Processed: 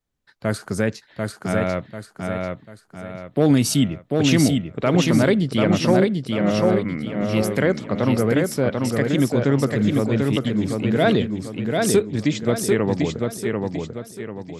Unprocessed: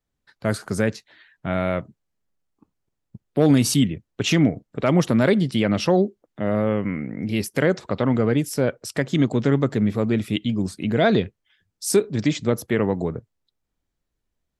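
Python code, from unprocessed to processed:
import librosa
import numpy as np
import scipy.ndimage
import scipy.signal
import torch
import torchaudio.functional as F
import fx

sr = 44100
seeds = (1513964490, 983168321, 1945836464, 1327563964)

y = fx.echo_feedback(x, sr, ms=742, feedback_pct=39, wet_db=-3.5)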